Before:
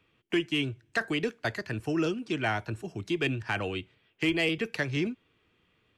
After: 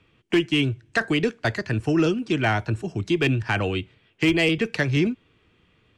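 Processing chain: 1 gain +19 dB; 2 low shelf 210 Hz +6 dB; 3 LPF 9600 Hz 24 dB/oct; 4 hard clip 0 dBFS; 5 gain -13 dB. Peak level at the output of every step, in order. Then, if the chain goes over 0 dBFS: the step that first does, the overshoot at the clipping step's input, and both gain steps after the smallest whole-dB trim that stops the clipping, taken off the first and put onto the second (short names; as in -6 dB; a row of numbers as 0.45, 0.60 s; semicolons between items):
+0.5, +3.0, +3.0, 0.0, -13.0 dBFS; step 1, 3.0 dB; step 1 +16 dB, step 5 -10 dB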